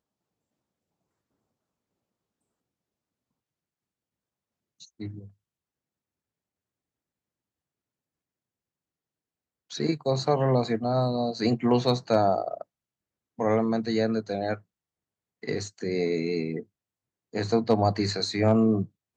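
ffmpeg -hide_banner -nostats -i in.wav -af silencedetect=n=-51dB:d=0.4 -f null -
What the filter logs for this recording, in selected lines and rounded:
silence_start: 0.00
silence_end: 4.80 | silence_duration: 4.80
silence_start: 5.30
silence_end: 9.70 | silence_duration: 4.40
silence_start: 12.63
silence_end: 13.38 | silence_duration: 0.75
silence_start: 14.61
silence_end: 15.43 | silence_duration: 0.82
silence_start: 16.63
silence_end: 17.33 | silence_duration: 0.70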